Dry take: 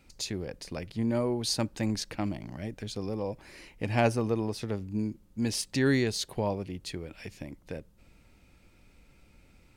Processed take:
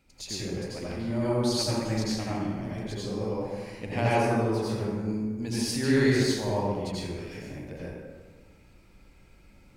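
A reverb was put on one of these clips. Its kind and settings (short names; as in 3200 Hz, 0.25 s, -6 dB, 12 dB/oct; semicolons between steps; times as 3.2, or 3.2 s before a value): plate-style reverb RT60 1.5 s, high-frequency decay 0.5×, pre-delay 75 ms, DRR -8.5 dB; gain -6 dB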